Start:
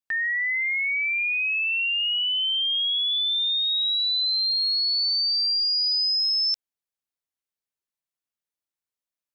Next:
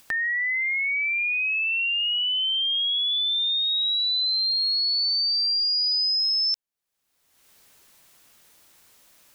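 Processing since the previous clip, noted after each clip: upward compressor, threshold -29 dBFS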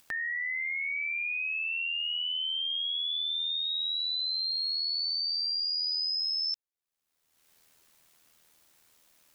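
AM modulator 80 Hz, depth 40%; trim -5 dB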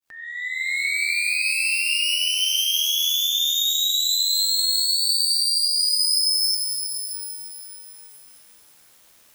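fade-in on the opening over 0.78 s; echo whose repeats swap between lows and highs 238 ms, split 2.5 kHz, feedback 57%, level -13 dB; pitch-shifted reverb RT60 2.9 s, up +12 st, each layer -2 dB, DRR 4 dB; trim +7.5 dB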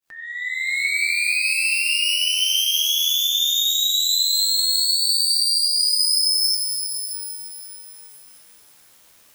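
flange 0.6 Hz, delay 5.2 ms, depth 5.8 ms, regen +74%; trim +6 dB

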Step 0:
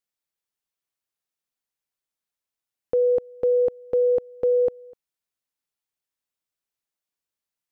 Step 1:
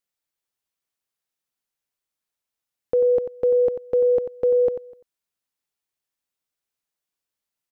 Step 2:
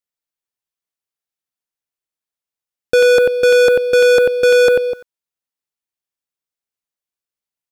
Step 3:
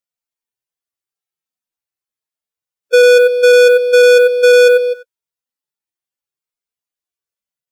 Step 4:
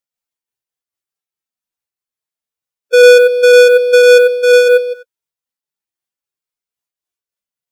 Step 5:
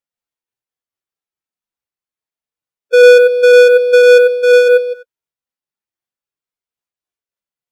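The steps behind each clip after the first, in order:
delay 92 ms -10 dB; trim +1.5 dB
waveshaping leveller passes 5; trim +5.5 dB
harmonic-percussive separation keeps harmonic; trim +3.5 dB
random flutter of the level, depth 60%; trim +4 dB
treble shelf 3.7 kHz -7.5 dB

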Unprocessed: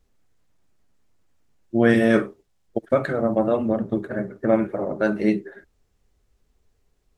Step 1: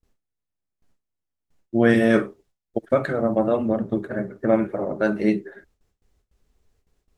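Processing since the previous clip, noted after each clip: gate with hold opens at -56 dBFS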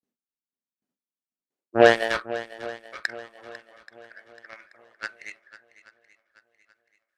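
high-pass sweep 230 Hz -> 1.9 kHz, 1.30–2.54 s; Chebyshev shaper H 7 -18 dB, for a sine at -4 dBFS; shuffle delay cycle 831 ms, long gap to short 1.5:1, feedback 36%, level -16 dB; trim +3 dB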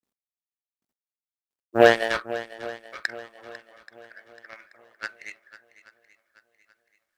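companded quantiser 8-bit

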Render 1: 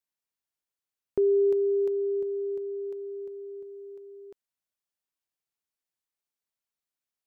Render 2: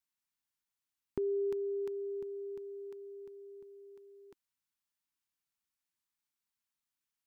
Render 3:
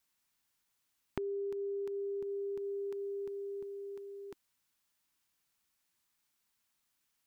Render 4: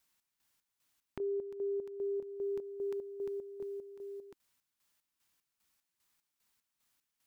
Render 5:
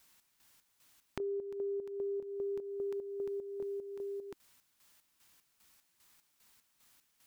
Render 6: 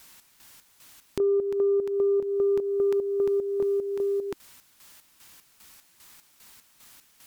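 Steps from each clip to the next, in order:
high-order bell 520 Hz -11.5 dB 1.1 oct
compression 10:1, threshold -46 dBFS, peak gain reduction 14.5 dB; trim +10 dB
square tremolo 2.5 Hz, depth 65%, duty 50%; trim +2.5 dB
compression 2.5:1, threshold -53 dBFS, peak gain reduction 12.5 dB; trim +11 dB
sine folder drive 7 dB, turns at -19.5 dBFS; trim +3.5 dB

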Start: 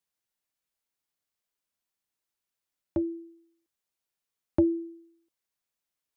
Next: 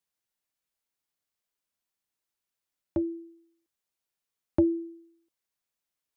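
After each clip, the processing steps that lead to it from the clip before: no audible change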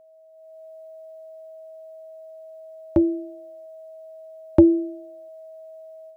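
whistle 640 Hz -50 dBFS; level rider gain up to 10.5 dB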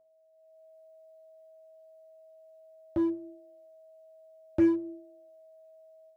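feedback comb 110 Hz, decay 0.5 s, harmonics all, mix 80%; in parallel at -10 dB: wavefolder -25.5 dBFS; on the sum: trim -4 dB

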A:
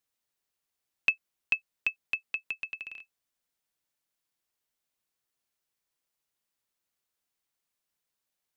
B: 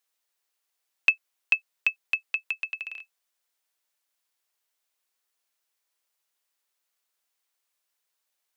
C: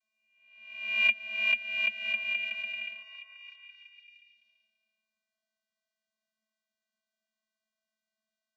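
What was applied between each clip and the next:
Bessel high-pass 550 Hz; trim +5 dB
reverse spectral sustain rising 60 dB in 0.90 s; vocoder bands 32, square 218 Hz; repeats whose band climbs or falls 336 ms, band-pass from 630 Hz, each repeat 0.7 oct, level -8 dB; trim -6 dB

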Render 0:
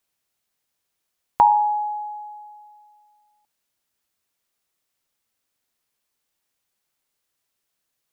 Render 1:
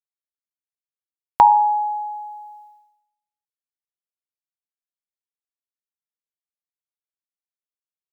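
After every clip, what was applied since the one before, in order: expander -45 dBFS; trim +3 dB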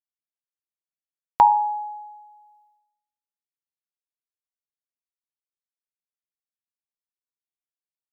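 upward expansion 1.5:1, over -34 dBFS; trim -2 dB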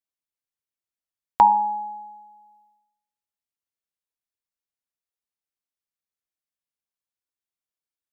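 octave divider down 2 oct, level -5 dB

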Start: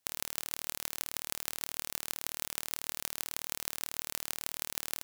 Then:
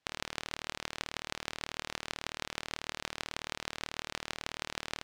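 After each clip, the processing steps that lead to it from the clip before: low-pass 3.7 kHz 12 dB/octave; trim +5 dB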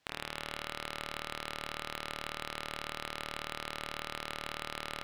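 saturation -24.5 dBFS, distortion -8 dB; spring tank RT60 3.1 s, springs 33 ms, chirp 45 ms, DRR 7 dB; trim +6 dB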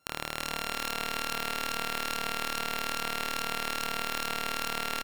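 sorted samples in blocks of 32 samples; feedback delay 336 ms, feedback 53%, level -4 dB; trim +5 dB

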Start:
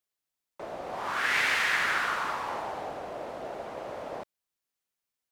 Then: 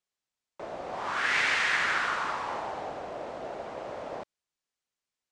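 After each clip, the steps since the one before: low-pass 8.4 kHz 24 dB/octave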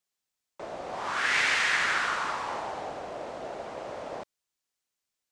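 treble shelf 5.2 kHz +7 dB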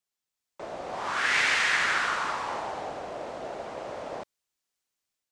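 level rider gain up to 4 dB; trim -3 dB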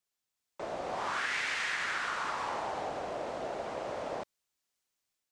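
compression 6:1, threshold -31 dBFS, peak gain reduction 10 dB

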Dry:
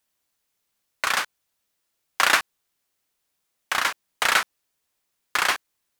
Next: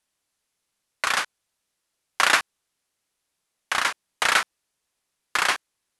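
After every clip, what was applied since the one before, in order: steep low-pass 12 kHz 96 dB/octave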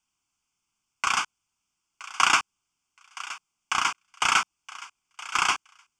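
static phaser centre 2.7 kHz, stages 8; thinning echo 970 ms, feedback 18%, high-pass 930 Hz, level -15 dB; trim +1.5 dB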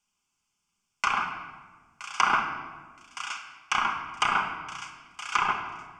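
low-pass that closes with the level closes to 1.3 kHz, closed at -20 dBFS; simulated room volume 1400 m³, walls mixed, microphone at 1.3 m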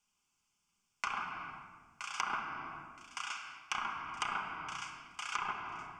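compression 2.5:1, threshold -37 dBFS, peak gain reduction 13.5 dB; trim -1.5 dB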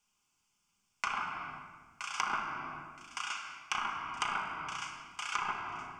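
feedback comb 51 Hz, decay 0.89 s, harmonics all, mix 60%; trim +8.5 dB

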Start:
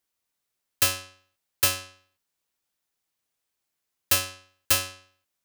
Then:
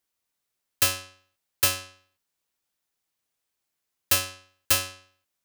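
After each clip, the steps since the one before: no audible change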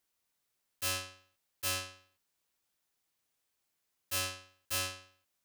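slow attack 151 ms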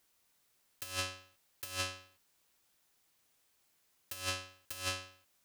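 compressor with a negative ratio -40 dBFS, ratio -0.5; trim +2.5 dB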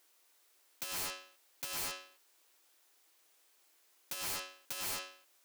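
brick-wall FIR high-pass 280 Hz; integer overflow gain 37 dB; trim +4.5 dB

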